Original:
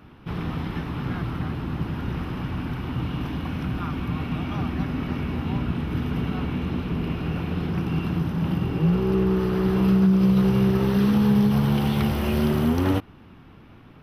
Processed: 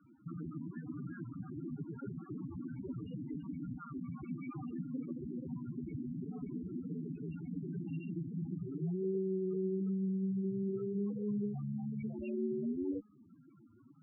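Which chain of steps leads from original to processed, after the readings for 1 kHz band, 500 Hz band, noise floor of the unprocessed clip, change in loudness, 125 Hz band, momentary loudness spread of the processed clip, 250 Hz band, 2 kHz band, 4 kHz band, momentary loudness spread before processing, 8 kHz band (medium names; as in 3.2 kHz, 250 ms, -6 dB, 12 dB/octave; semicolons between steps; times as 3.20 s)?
-25.5 dB, -11.5 dB, -48 dBFS, -15.5 dB, -18.0 dB, 9 LU, -15.0 dB, under -25 dB, under -35 dB, 11 LU, no reading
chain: in parallel at -5 dB: saturation -19 dBFS, distortion -13 dB; on the sum: de-hum 209.5 Hz, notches 8; Chebyshev shaper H 2 -11 dB, 4 -18 dB, 7 -23 dB, 8 -22 dB, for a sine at -8 dBFS; compression 12:1, threshold -26 dBFS, peak gain reduction 15 dB; low-pass 2.9 kHz 24 dB/octave; tilt EQ +4 dB/octave; loudest bins only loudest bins 4; resonant low shelf 640 Hz +8 dB, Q 1.5; trim -5 dB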